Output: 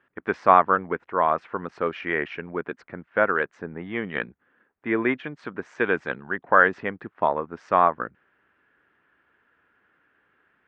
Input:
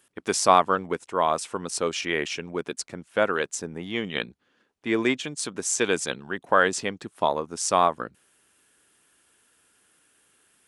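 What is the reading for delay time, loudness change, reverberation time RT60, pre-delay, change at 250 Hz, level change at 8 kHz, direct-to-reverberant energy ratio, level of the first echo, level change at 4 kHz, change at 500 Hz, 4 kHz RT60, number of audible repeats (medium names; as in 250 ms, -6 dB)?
no echo, +1.5 dB, no reverb, no reverb, 0.0 dB, under -35 dB, no reverb, no echo, -14.0 dB, +0.5 dB, no reverb, no echo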